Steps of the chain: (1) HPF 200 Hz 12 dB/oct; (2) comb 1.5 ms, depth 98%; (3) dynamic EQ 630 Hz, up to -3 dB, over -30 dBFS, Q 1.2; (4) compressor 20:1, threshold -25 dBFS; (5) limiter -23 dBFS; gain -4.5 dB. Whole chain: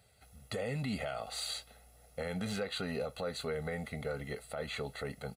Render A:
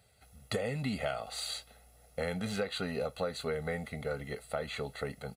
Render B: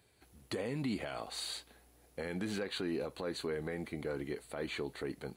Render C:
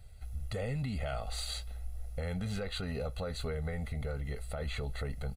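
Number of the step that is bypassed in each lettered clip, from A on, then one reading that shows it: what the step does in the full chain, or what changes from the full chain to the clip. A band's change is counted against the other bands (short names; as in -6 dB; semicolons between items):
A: 5, crest factor change +6.0 dB; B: 2, 250 Hz band +4.0 dB; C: 1, 125 Hz band +7.5 dB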